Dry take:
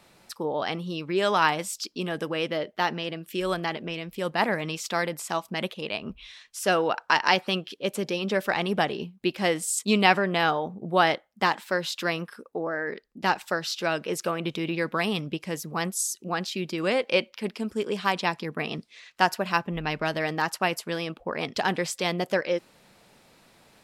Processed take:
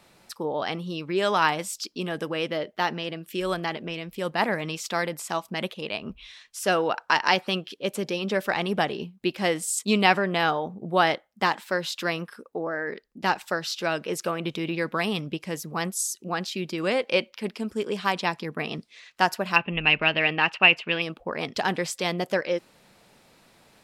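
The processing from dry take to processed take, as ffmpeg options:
-filter_complex "[0:a]asettb=1/sr,asplit=3[a][b][c];[a]atrim=end=19.564[d];[b]atrim=start=19.56:end=21.02,asetpts=PTS-STARTPTS,afade=t=in:d=0.004:c=qsin,afade=t=out:st=1.456:d=0.004:c=qsin,lowpass=f=2.7k:t=q:w=8.4[e];[c]atrim=start=21.016[f];[d][e]acrossfade=d=0.004:c1=hsin:c2=qsin[g];[g][f]acrossfade=d=0.004:c1=qsin:c2=hsin"

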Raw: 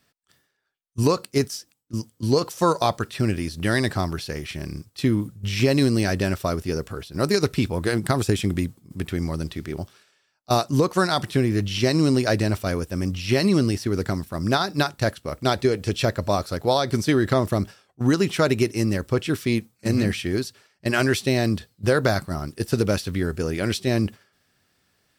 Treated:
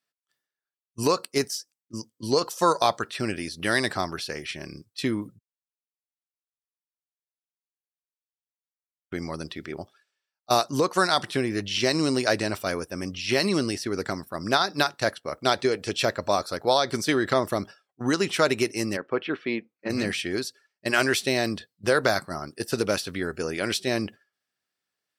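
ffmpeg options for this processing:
-filter_complex "[0:a]asplit=3[a][b][c];[a]afade=t=out:st=18.96:d=0.02[d];[b]highpass=200,lowpass=2.6k,afade=t=in:st=18.96:d=0.02,afade=t=out:st=19.89:d=0.02[e];[c]afade=t=in:st=19.89:d=0.02[f];[d][e][f]amix=inputs=3:normalize=0,asplit=3[g][h][i];[g]atrim=end=5.39,asetpts=PTS-STARTPTS,afade=t=out:st=5.386:d=0.004:c=hsin[j];[h]atrim=start=5.39:end=9.12,asetpts=PTS-STARTPTS,volume=0[k];[i]atrim=start=9.12,asetpts=PTS-STARTPTS,afade=t=in:d=0.004:c=hsin[l];[j][k][l]concat=n=3:v=0:a=1,highpass=f=530:p=1,afftdn=nr=18:nf=-50,volume=1.5dB"

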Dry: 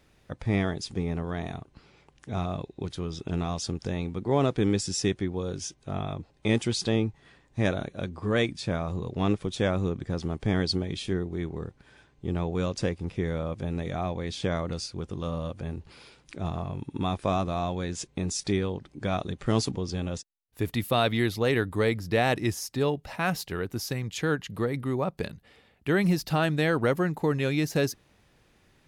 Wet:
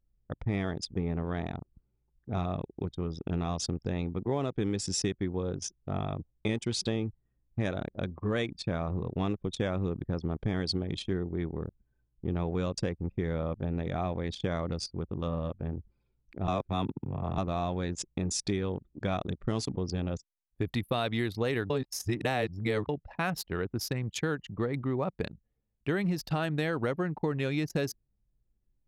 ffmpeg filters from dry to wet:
-filter_complex "[0:a]asplit=5[a][b][c][d][e];[a]atrim=end=16.482[f];[b]atrim=start=16.478:end=17.382,asetpts=PTS-STARTPTS,areverse[g];[c]atrim=start=17.378:end=21.702[h];[d]atrim=start=21.698:end=22.892,asetpts=PTS-STARTPTS,areverse[i];[e]atrim=start=22.888[j];[f][g]acrossfade=d=0.004:c1=hsin:c2=hsin[k];[k][h]acrossfade=d=0.004:c1=hsin:c2=hsin[l];[l][i]acrossfade=d=0.004:c1=hsin:c2=hsin[m];[m][j]acrossfade=d=0.004:c1=hsin:c2=hsin,anlmdn=3.98,acompressor=threshold=-26dB:ratio=6"

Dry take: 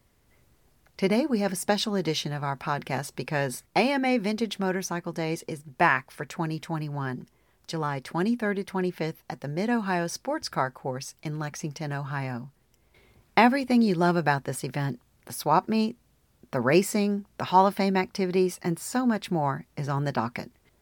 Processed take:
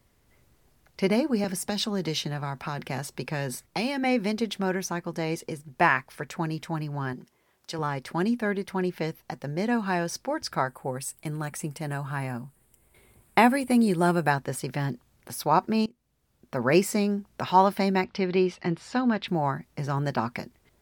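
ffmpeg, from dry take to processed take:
-filter_complex "[0:a]asettb=1/sr,asplit=3[a][b][c];[a]atrim=end=1.444[d];[b]atrim=start=1.44:end=4.04,asetpts=PTS-STARTPTS,afade=t=in:d=0.004:c=qsin,afade=t=out:st=2.596:d=0.004:c=qsin,acrossover=split=240|3000[e][f][g];[f]acompressor=threshold=-28dB:ratio=6:attack=3.2:release=140:knee=2.83:detection=peak[h];[e][h][g]amix=inputs=3:normalize=0[i];[c]atrim=start=4.036[j];[d][i]acrossfade=d=0.004:c1=hsin:c2=qsin[k];[k][j]acrossfade=d=0.004:c1=qsin:c2=hsin,asettb=1/sr,asplit=3[l][m][n];[l]atrim=end=7.134[o];[m]atrim=start=7.13:end=7.79,asetpts=PTS-STARTPTS,afade=t=in:d=0.004:c=qsin,afade=t=out:st=0.656:d=0.004:c=qsin,highpass=f=280:p=1[p];[n]atrim=start=7.786[q];[o][p]acrossfade=d=0.004:c1=hsin:c2=qsin[r];[r][q]acrossfade=d=0.004:c1=qsin:c2=hsin,asettb=1/sr,asplit=3[s][t][u];[s]atrim=end=10.684[v];[t]atrim=start=10.68:end=14.31,asetpts=PTS-STARTPTS,afade=t=in:d=0.004:c=qsin,afade=t=out:st=3.626:d=0.004:c=qsin,highshelf=f=7.2k:t=q:w=3:g=7[w];[u]atrim=start=14.306[x];[v][w]acrossfade=d=0.004:c1=hsin:c2=qsin[y];[y][x]acrossfade=d=0.004:c1=qsin:c2=hsin,asettb=1/sr,asplit=3[z][aa][ab];[z]atrim=end=18.044[ac];[aa]atrim=start=18.04:end=19.28,asetpts=PTS-STARTPTS,afade=t=in:d=0.004:c=qsin,afade=t=out:st=1.236:d=0.004:c=qsin,lowpass=f=3.5k:t=q:w=1.6[ad];[ab]atrim=start=19.276[ae];[ac][ad]acrossfade=d=0.004:c1=hsin:c2=qsin[af];[af][ae]acrossfade=d=0.004:c1=qsin:c2=hsin,asplit=2[ag][ah];[ag]atrim=end=15.86,asetpts=PTS-STARTPTS,afade=t=out:st=15.856:d=0.004:c=hsin:silence=0.0944061[ai];[ah]atrim=start=15.86,asetpts=PTS-STARTPTS,afade=t=in:d=0.89:silence=0.0944061[aj];[ai][aj]concat=n=2:v=0:a=1"

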